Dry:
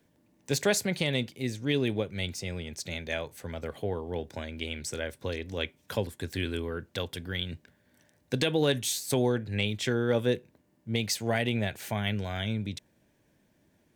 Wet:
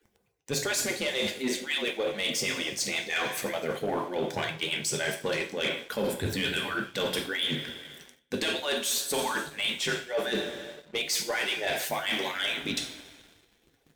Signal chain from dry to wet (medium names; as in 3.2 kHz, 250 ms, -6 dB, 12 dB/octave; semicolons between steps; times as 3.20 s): harmonic-percussive separation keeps percussive; two-slope reverb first 0.48 s, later 2.4 s, from -16 dB, DRR 2.5 dB; reverse; compression 12:1, threshold -38 dBFS, peak gain reduction 16 dB; reverse; waveshaping leveller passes 2; trim +6 dB